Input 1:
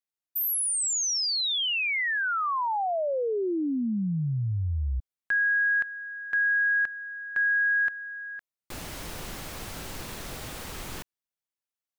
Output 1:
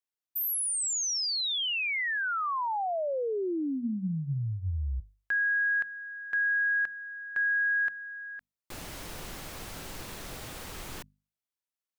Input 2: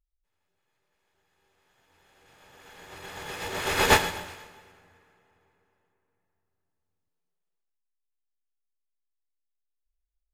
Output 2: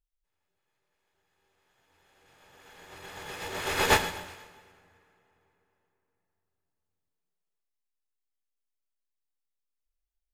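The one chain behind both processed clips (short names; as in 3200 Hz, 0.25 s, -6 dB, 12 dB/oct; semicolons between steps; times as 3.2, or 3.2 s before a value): notches 50/100/150/200/250 Hz; gain -3 dB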